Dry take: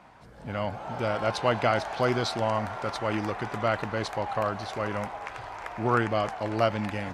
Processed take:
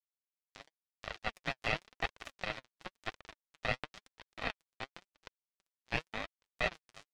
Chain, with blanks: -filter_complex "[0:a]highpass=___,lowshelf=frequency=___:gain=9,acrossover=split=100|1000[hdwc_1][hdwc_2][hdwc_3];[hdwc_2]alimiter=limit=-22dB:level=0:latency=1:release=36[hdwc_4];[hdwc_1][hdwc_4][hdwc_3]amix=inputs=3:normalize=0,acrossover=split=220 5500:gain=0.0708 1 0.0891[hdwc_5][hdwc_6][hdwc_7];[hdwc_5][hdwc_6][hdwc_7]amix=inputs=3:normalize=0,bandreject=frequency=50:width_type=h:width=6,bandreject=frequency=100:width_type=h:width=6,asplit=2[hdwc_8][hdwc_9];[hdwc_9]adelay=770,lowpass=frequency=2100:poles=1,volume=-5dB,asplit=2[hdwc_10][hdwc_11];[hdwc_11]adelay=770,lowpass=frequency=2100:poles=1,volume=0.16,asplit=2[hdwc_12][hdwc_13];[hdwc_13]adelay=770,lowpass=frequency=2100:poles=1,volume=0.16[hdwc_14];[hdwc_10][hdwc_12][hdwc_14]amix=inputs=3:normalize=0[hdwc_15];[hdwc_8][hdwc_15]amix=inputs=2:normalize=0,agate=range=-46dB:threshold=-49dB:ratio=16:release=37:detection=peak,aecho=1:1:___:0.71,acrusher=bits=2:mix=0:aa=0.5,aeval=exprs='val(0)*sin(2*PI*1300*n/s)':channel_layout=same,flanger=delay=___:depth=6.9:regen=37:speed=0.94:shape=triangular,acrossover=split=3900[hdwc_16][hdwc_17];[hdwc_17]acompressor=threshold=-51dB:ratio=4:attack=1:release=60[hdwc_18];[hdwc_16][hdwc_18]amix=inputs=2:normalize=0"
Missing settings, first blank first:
48, 66, 1.6, 1.4